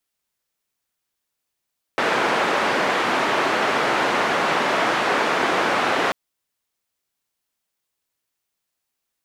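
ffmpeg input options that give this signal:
ffmpeg -f lavfi -i "anoisesrc=color=white:duration=4.14:sample_rate=44100:seed=1,highpass=frequency=270,lowpass=frequency=1500,volume=-3.6dB" out.wav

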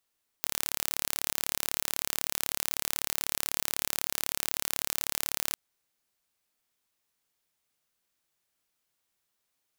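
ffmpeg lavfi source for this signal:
ffmpeg -f lavfi -i "aevalsrc='0.75*eq(mod(n,1222),0)':duration=5.1:sample_rate=44100" out.wav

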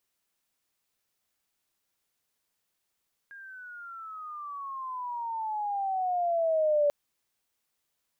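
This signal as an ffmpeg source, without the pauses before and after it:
ffmpeg -f lavfi -i "aevalsrc='pow(10,(-20.5+23*(t/3.59-1))/20)*sin(2*PI*1630*3.59/(-18*log(2)/12)*(exp(-18*log(2)/12*t/3.59)-1))':duration=3.59:sample_rate=44100" out.wav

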